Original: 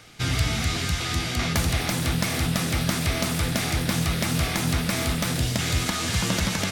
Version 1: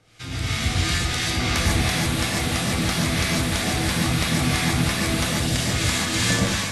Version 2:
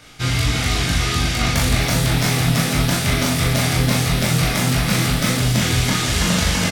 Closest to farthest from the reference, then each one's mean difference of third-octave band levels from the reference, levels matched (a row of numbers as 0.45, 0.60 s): 2, 1; 2.0, 4.5 dB